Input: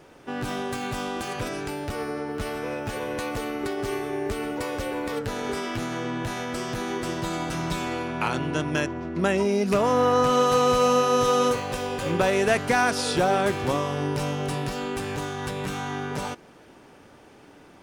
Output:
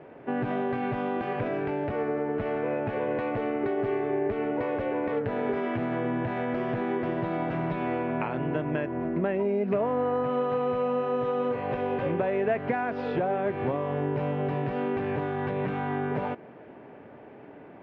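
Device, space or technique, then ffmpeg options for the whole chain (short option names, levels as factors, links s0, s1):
bass amplifier: -af "acompressor=threshold=0.0398:ratio=6,highpass=71,equalizer=f=75:t=q:w=4:g=-8,equalizer=f=130:t=q:w=4:g=3,equalizer=f=240:t=q:w=4:g=3,equalizer=f=420:t=q:w=4:g=4,equalizer=f=640:t=q:w=4:g=6,equalizer=f=1300:t=q:w=4:g=-5,lowpass=f=2300:w=0.5412,lowpass=f=2300:w=1.3066,volume=1.19"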